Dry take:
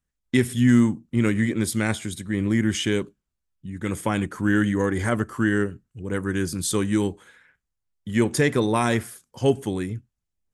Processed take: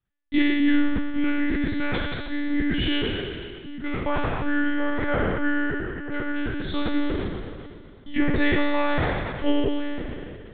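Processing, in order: spectral trails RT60 2.21 s; monotone LPC vocoder at 8 kHz 290 Hz; gain -3 dB

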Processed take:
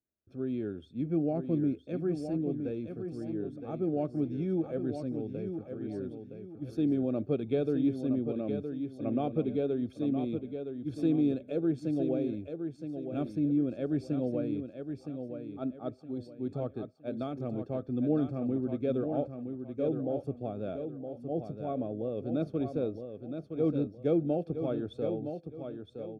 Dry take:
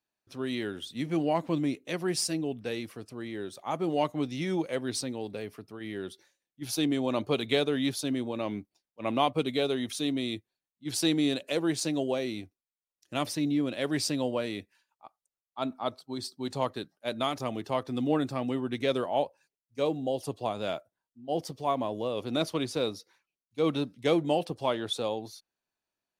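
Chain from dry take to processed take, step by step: running mean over 45 samples; bell 74 Hz +13 dB 0.25 oct; feedback echo 0.966 s, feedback 32%, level -7.5 dB; gain +1 dB

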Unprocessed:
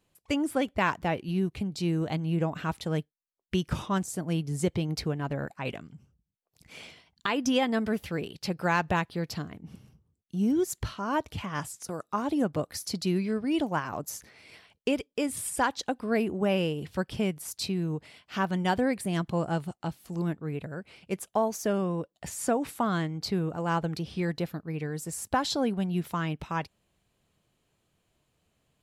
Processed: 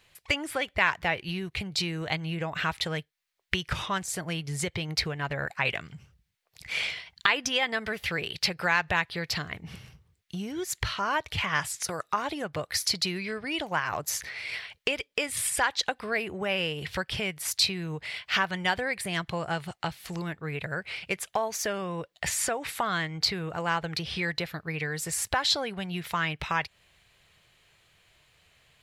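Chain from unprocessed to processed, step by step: compressor 3:1, threshold -36 dBFS, peak gain reduction 11.5 dB; graphic EQ 250/2000/4000 Hz -12/+10/+6 dB; gain +8 dB

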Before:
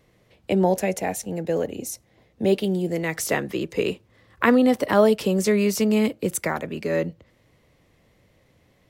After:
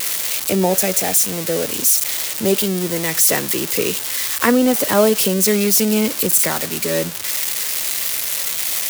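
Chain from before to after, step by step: switching spikes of -12 dBFS; gain +2.5 dB

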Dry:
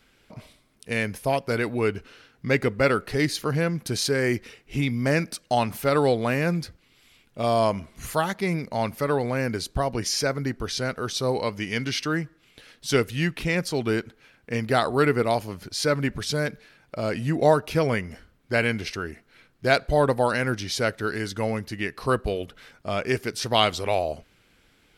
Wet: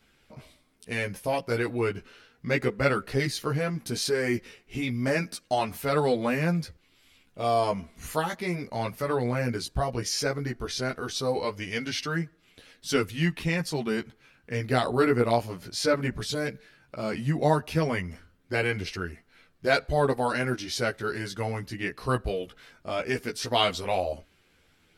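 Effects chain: chorus voices 2, 0.16 Hz, delay 14 ms, depth 3.1 ms

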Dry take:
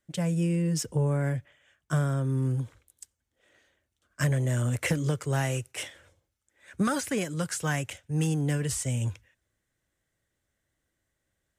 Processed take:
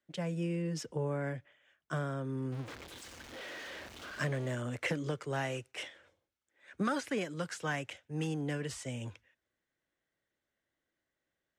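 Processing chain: 2.52–4.55 zero-crossing step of -34 dBFS; three-band isolator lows -13 dB, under 190 Hz, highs -15 dB, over 5400 Hz; gain -4 dB

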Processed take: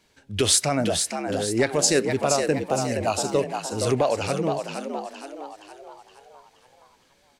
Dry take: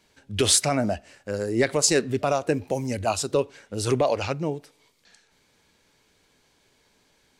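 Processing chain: frequency-shifting echo 0.468 s, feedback 48%, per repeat +70 Hz, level -6 dB

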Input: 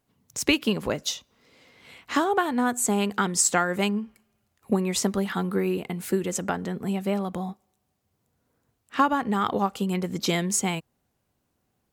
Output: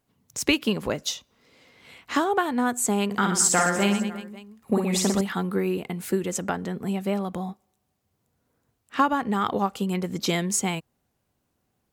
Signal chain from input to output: 3.06–5.21 reverse bouncing-ball echo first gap 50 ms, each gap 1.4×, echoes 5

